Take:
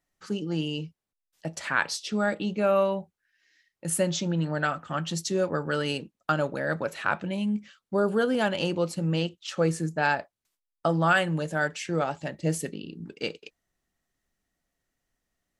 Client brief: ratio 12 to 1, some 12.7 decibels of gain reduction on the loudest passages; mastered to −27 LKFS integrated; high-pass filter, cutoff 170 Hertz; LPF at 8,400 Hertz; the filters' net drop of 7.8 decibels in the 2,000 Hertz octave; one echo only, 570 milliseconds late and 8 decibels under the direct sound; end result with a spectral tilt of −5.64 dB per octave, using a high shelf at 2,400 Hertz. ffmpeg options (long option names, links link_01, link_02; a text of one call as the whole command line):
ffmpeg -i in.wav -af "highpass=170,lowpass=8400,equalizer=frequency=2000:width_type=o:gain=-8,highshelf=frequency=2400:gain=-8,acompressor=threshold=-33dB:ratio=12,aecho=1:1:570:0.398,volume=12dB" out.wav